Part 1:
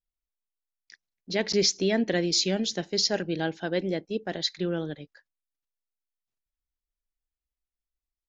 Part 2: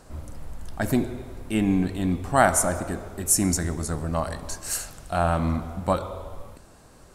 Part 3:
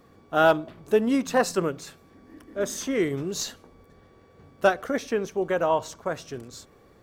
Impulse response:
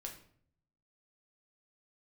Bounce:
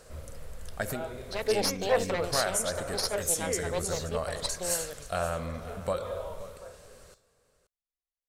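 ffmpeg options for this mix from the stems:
-filter_complex "[0:a]aeval=exprs='0.282*(cos(1*acos(clip(val(0)/0.282,-1,1)))-cos(1*PI/2))+0.126*(cos(4*acos(clip(val(0)/0.282,-1,1)))-cos(4*PI/2))+0.02*(cos(6*acos(clip(val(0)/0.282,-1,1)))-cos(6*PI/2))':c=same,volume=0.422,asplit=2[s0][s1];[1:a]equalizer=f=840:t=o:w=0.86:g=-11,acompressor=threshold=0.0447:ratio=6,volume=1.12,asplit=2[s2][s3];[s3]volume=0.158[s4];[2:a]adelay=550,volume=0.316,asplit=2[s5][s6];[s6]volume=0.316[s7];[s1]apad=whole_len=333853[s8];[s5][s8]sidechaingate=range=0.0224:threshold=0.00316:ratio=16:detection=peak[s9];[3:a]atrim=start_sample=2205[s10];[s7][s10]afir=irnorm=-1:irlink=0[s11];[s4]aecho=0:1:527:1[s12];[s0][s2][s9][s11][s12]amix=inputs=5:normalize=0,lowshelf=f=390:t=q:w=3:g=-6.5"

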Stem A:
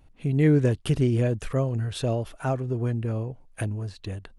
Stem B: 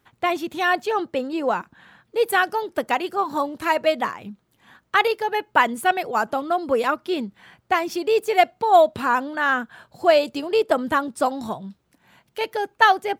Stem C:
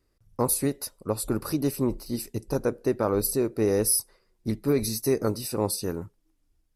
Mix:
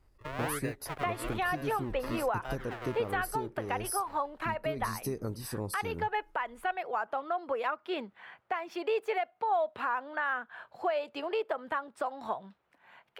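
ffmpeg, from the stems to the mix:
-filter_complex "[0:a]deesser=0.75,highshelf=f=8000:g=10.5,acrusher=samples=39:mix=1:aa=0.000001:lfo=1:lforange=39:lforate=1.1,volume=0.501[s0];[1:a]adelay=800,volume=1.06[s1];[2:a]lowshelf=f=150:g=12,acompressor=threshold=0.02:ratio=2.5,volume=0.708[s2];[s0][s1]amix=inputs=2:normalize=0,acrossover=split=490 2900:gain=0.141 1 0.112[s3][s4][s5];[s3][s4][s5]amix=inputs=3:normalize=0,acompressor=threshold=0.0316:ratio=2,volume=1[s6];[s2][s6]amix=inputs=2:normalize=0,alimiter=limit=0.0841:level=0:latency=1:release=249"

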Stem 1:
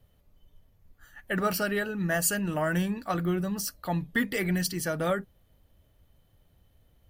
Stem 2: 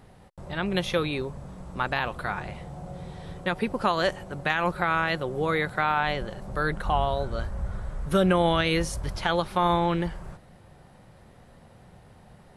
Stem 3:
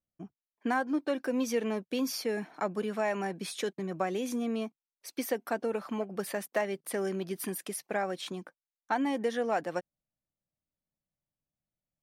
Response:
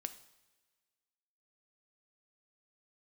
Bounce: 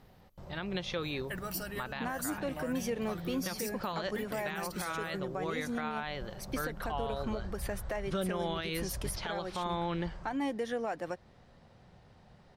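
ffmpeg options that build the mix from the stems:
-filter_complex "[0:a]alimiter=limit=0.0944:level=0:latency=1:release=415,highshelf=f=3900:g=11,volume=0.316[s0];[1:a]lowpass=f=5300:t=q:w=1.5,volume=0.447[s1];[2:a]adelay=1350,volume=0.841[s2];[s0][s1][s2]amix=inputs=3:normalize=0,alimiter=level_in=1.12:limit=0.0631:level=0:latency=1:release=159,volume=0.891"

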